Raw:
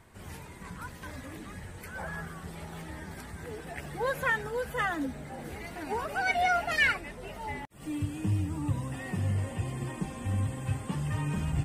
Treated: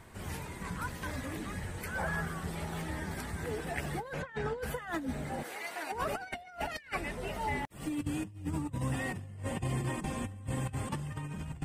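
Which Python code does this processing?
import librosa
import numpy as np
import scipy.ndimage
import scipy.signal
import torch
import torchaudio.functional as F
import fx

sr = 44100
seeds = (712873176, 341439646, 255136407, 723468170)

y = fx.highpass(x, sr, hz=630.0, slope=12, at=(5.42, 5.91), fade=0.02)
y = fx.over_compress(y, sr, threshold_db=-35.0, ratio=-0.5)
y = fx.air_absorb(y, sr, metres=100.0, at=(4.12, 4.61), fade=0.02)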